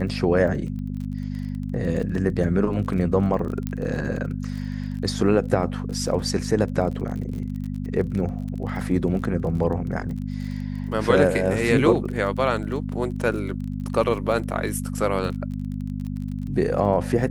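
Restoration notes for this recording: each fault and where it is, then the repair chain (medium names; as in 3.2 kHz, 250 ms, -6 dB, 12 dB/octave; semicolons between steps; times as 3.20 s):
crackle 26 per s -32 dBFS
hum 50 Hz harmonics 5 -29 dBFS
3.67 s: pop -15 dBFS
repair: de-click; de-hum 50 Hz, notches 5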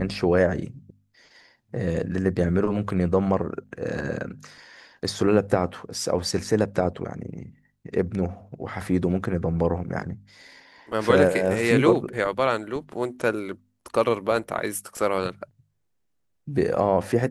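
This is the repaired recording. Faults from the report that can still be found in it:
nothing left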